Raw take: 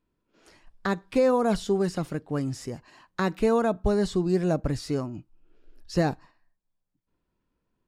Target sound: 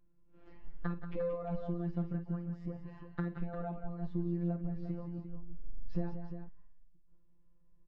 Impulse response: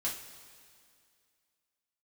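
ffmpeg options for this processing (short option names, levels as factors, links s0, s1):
-af "lowpass=2700,aemphasis=mode=reproduction:type=riaa,acompressor=threshold=0.0316:ratio=6,afftfilt=real='hypot(re,im)*cos(PI*b)':imag='0':win_size=1024:overlap=0.75,aecho=1:1:50|168|181|350:0.224|0.15|0.335|0.316,volume=0.75"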